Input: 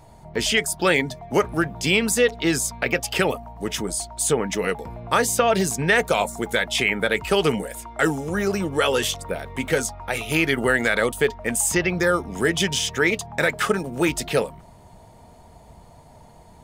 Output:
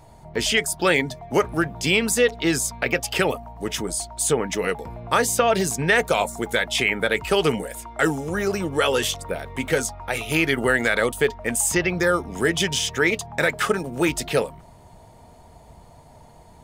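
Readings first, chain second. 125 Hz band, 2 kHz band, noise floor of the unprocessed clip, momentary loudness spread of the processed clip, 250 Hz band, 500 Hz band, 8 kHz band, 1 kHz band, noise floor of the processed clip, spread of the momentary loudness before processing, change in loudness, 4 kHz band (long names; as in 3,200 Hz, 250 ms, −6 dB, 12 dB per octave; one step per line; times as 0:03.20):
−0.5 dB, 0.0 dB, −49 dBFS, 7 LU, −0.5 dB, 0.0 dB, 0.0 dB, 0.0 dB, −49 dBFS, 7 LU, 0.0 dB, 0.0 dB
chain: parametric band 200 Hz −3.5 dB 0.22 octaves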